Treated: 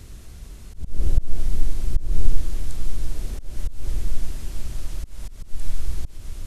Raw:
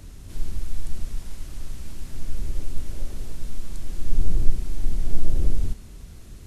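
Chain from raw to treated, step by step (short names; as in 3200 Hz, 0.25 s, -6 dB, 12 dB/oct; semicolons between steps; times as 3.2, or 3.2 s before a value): whole clip reversed; bell 210 Hz -4 dB 1.9 oct; resonator 60 Hz, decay 0.21 s, harmonics all, mix 40%; swelling echo 0.125 s, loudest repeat 8, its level -17.5 dB; auto swell 0.223 s; gain +5 dB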